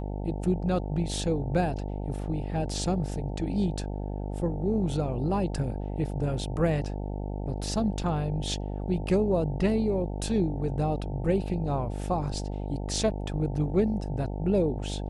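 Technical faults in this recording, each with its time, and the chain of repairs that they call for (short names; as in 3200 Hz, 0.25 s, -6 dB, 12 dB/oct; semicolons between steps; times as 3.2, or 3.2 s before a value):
buzz 50 Hz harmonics 18 -33 dBFS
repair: de-hum 50 Hz, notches 18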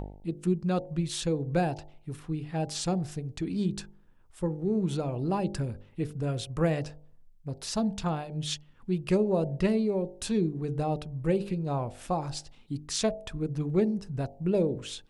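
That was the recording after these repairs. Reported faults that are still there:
none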